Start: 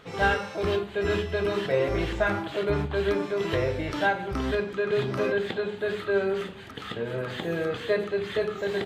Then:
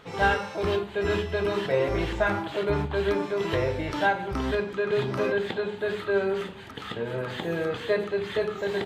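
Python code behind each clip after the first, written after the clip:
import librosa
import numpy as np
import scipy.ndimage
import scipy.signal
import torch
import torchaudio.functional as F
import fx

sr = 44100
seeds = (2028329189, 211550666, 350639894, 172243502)

y = fx.peak_eq(x, sr, hz=910.0, db=5.5, octaves=0.26)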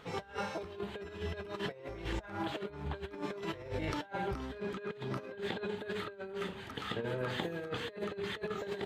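y = fx.over_compress(x, sr, threshold_db=-31.0, ratio=-0.5)
y = y * librosa.db_to_amplitude(-7.5)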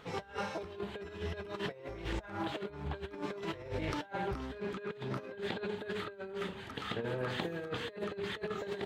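y = fx.doppler_dist(x, sr, depth_ms=0.19)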